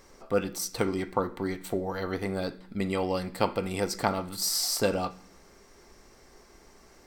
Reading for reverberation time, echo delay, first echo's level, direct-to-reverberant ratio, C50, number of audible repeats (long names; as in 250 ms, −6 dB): 0.65 s, no echo audible, no echo audible, 11.5 dB, 18.0 dB, no echo audible